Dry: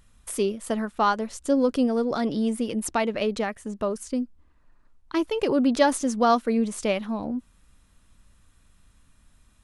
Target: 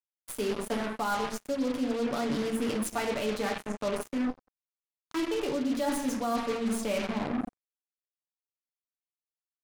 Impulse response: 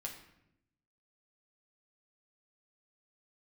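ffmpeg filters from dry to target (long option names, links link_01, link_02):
-filter_complex "[0:a]bandreject=frequency=8000:width=9.1,asplit=2[link_01][link_02];[link_02]aeval=exprs='sgn(val(0))*max(abs(val(0))-0.0158,0)':channel_layout=same,volume=-8dB[link_03];[link_01][link_03]amix=inputs=2:normalize=0[link_04];[1:a]atrim=start_sample=2205[link_05];[link_04][link_05]afir=irnorm=-1:irlink=0,acrossover=split=270[link_06][link_07];[link_07]acompressor=threshold=-24dB:ratio=2[link_08];[link_06][link_08]amix=inputs=2:normalize=0,acrusher=bits=4:mix=0:aa=0.5,areverse,acompressor=threshold=-28dB:ratio=6,areverse,volume=1dB"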